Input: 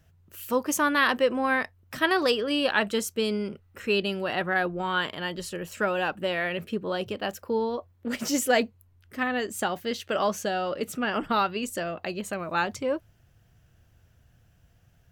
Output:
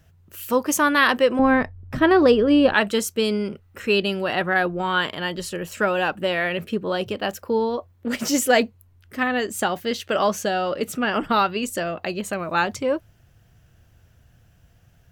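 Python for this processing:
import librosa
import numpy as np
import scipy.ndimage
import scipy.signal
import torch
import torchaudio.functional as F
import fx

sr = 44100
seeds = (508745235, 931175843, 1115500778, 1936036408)

y = fx.tilt_eq(x, sr, slope=-4.0, at=(1.39, 2.74))
y = F.gain(torch.from_numpy(y), 5.0).numpy()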